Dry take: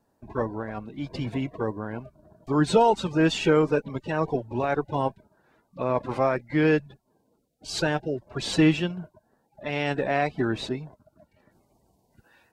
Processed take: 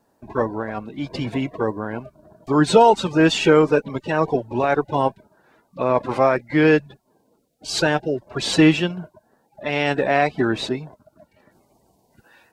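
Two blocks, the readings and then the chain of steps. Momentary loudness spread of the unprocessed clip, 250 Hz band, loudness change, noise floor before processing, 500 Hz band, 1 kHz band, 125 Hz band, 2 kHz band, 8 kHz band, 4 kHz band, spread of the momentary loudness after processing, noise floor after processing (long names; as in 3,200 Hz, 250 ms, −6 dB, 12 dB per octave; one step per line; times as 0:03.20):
14 LU, +5.5 dB, +6.0 dB, −71 dBFS, +6.5 dB, +7.0 dB, +3.0 dB, +7.0 dB, +7.0 dB, +7.0 dB, 14 LU, −65 dBFS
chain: low-shelf EQ 140 Hz −8 dB
level +7 dB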